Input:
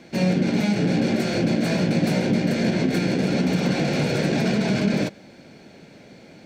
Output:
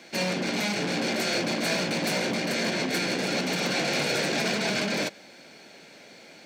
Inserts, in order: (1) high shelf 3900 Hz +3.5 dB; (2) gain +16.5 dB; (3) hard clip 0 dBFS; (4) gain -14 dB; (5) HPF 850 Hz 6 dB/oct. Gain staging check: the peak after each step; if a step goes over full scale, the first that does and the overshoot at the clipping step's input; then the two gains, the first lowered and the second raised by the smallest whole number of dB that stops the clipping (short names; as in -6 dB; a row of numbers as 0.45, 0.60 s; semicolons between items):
-9.5, +7.0, 0.0, -14.0, -14.0 dBFS; step 2, 7.0 dB; step 2 +9.5 dB, step 4 -7 dB